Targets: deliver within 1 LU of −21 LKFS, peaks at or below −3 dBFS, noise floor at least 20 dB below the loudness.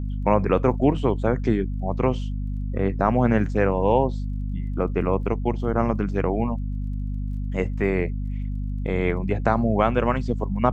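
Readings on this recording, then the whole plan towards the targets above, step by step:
crackle rate 23 per second; mains hum 50 Hz; hum harmonics up to 250 Hz; level of the hum −25 dBFS; integrated loudness −24.0 LKFS; sample peak −3.0 dBFS; target loudness −21.0 LKFS
→ click removal
mains-hum notches 50/100/150/200/250 Hz
level +3 dB
brickwall limiter −3 dBFS

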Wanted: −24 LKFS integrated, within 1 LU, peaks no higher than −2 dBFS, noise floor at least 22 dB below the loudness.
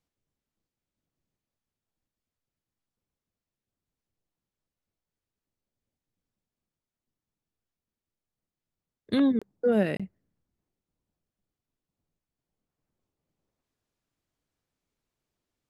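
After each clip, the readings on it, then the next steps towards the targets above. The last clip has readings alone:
number of dropouts 2; longest dropout 26 ms; integrated loudness −26.5 LKFS; sample peak −13.0 dBFS; target loudness −24.0 LKFS
→ repair the gap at 0:09.39/0:09.97, 26 ms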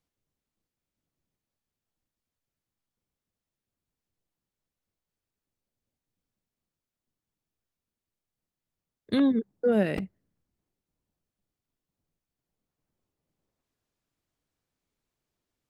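number of dropouts 0; integrated loudness −26.5 LKFS; sample peak −13.0 dBFS; target loudness −24.0 LKFS
→ level +2.5 dB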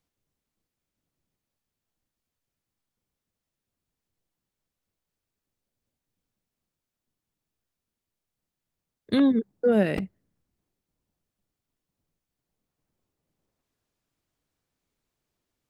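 integrated loudness −24.0 LKFS; sample peak −11.0 dBFS; background noise floor −87 dBFS

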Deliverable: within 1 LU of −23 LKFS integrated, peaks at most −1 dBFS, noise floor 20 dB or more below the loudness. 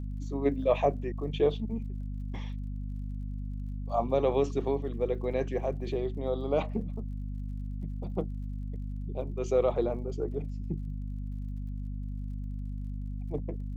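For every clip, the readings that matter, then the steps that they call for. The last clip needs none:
crackle rate 46 per second; mains hum 50 Hz; hum harmonics up to 250 Hz; level of the hum −33 dBFS; integrated loudness −33.0 LKFS; sample peak −13.0 dBFS; target loudness −23.0 LKFS
→ click removal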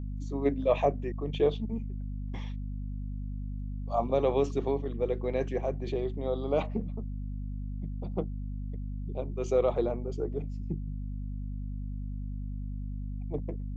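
crackle rate 0.22 per second; mains hum 50 Hz; hum harmonics up to 250 Hz; level of the hum −33 dBFS
→ hum removal 50 Hz, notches 5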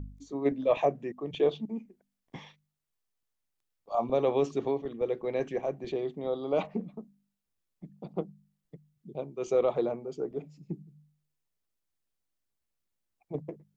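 mains hum none found; integrated loudness −32.0 LKFS; sample peak −13.5 dBFS; target loudness −23.0 LKFS
→ level +9 dB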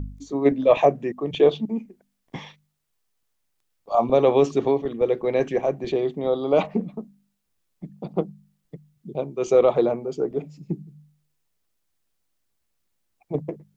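integrated loudness −23.0 LKFS; sample peak −4.5 dBFS; background noise floor −74 dBFS

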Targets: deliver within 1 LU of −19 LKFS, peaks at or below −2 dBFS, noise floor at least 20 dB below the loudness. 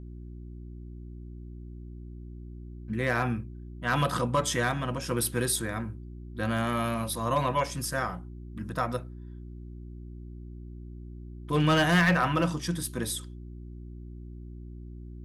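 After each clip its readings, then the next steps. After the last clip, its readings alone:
share of clipped samples 0.3%; peaks flattened at −17.0 dBFS; mains hum 60 Hz; hum harmonics up to 360 Hz; level of the hum −40 dBFS; integrated loudness −28.5 LKFS; sample peak −17.0 dBFS; target loudness −19.0 LKFS
→ clipped peaks rebuilt −17 dBFS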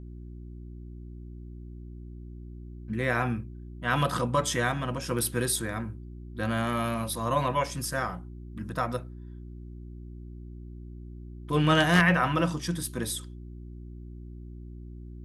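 share of clipped samples 0.0%; mains hum 60 Hz; hum harmonics up to 360 Hz; level of the hum −40 dBFS
→ hum removal 60 Hz, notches 6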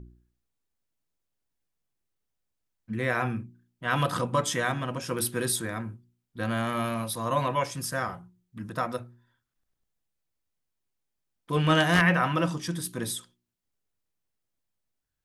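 mains hum none found; integrated loudness −28.0 LKFS; sample peak −8.0 dBFS; target loudness −19.0 LKFS
→ level +9 dB
brickwall limiter −2 dBFS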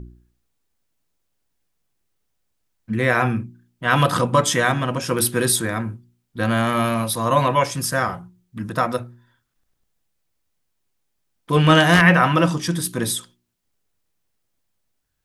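integrated loudness −19.5 LKFS; sample peak −2.0 dBFS; background noise floor −73 dBFS

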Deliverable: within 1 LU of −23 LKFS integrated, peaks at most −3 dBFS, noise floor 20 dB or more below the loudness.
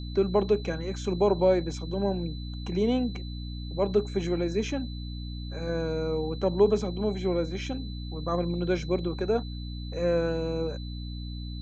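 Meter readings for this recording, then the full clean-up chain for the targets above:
mains hum 60 Hz; hum harmonics up to 300 Hz; level of the hum −34 dBFS; interfering tone 4,000 Hz; level of the tone −46 dBFS; integrated loudness −29.0 LKFS; sample peak −10.0 dBFS; target loudness −23.0 LKFS
→ hum removal 60 Hz, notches 5
notch filter 4,000 Hz, Q 30
level +6 dB

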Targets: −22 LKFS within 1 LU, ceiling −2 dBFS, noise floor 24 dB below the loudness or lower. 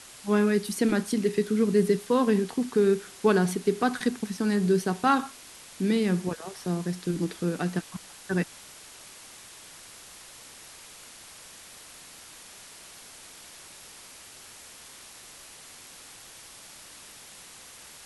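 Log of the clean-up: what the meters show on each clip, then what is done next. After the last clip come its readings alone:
background noise floor −48 dBFS; target noise floor −51 dBFS; integrated loudness −26.5 LKFS; sample peak −9.5 dBFS; target loudness −22.0 LKFS
→ noise reduction from a noise print 6 dB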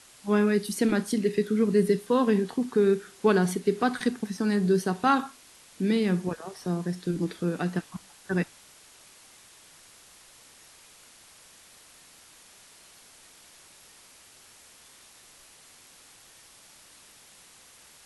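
background noise floor −54 dBFS; integrated loudness −26.5 LKFS; sample peak −9.5 dBFS; target loudness −22.0 LKFS
→ level +4.5 dB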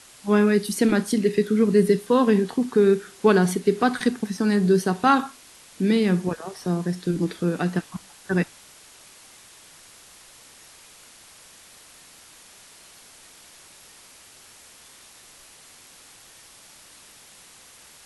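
integrated loudness −22.0 LKFS; sample peak −5.0 dBFS; background noise floor −50 dBFS

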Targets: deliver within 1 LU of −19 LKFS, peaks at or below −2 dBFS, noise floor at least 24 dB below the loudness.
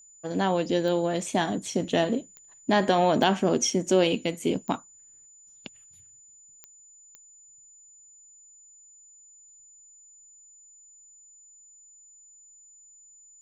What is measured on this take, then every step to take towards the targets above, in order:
number of clicks 6; interfering tone 7,000 Hz; level of the tone −51 dBFS; integrated loudness −25.5 LKFS; sample peak −7.5 dBFS; target loudness −19.0 LKFS
→ click removal
notch filter 7,000 Hz, Q 30
level +6.5 dB
brickwall limiter −2 dBFS

